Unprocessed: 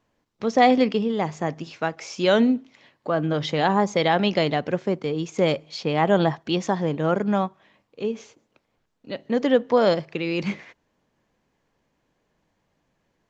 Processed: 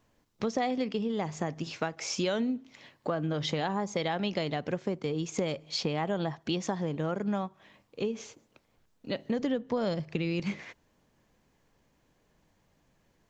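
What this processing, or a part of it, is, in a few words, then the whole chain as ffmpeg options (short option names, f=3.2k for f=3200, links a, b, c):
ASMR close-microphone chain: -filter_complex "[0:a]asettb=1/sr,asplit=3[a][b][c];[a]atrim=end=9.394[d];[b]atrim=start=9.39:end=10.4,asetpts=PTS-STARTPTS,afade=t=in:d=0.004:c=qsin,afade=t=out:st=1.006:d=0.004:c=qsin,bass=f=250:g=9,treble=f=4k:g=1[e];[c]atrim=start=10.396[f];[d][e]acrossfade=d=0.004:c1=hsin:c2=qsin[g];[g][f]acrossfade=d=0.004:c1=qsin:c2=hsin,lowshelf=f=130:g=6.5,acompressor=threshold=-28dB:ratio=6,highshelf=f=6.1k:g=8"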